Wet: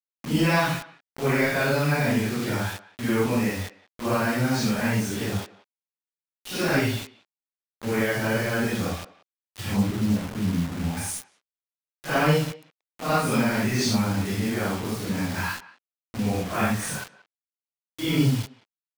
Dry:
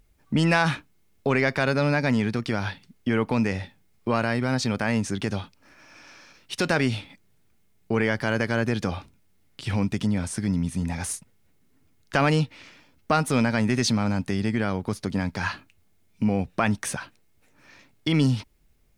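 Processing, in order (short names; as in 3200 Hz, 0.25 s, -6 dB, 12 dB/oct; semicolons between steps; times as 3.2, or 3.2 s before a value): phase scrambler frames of 0.2 s; 9.76–10.97 LPF 1200 Hz 24 dB/oct; bit-crush 6-bit; speakerphone echo 0.18 s, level -18 dB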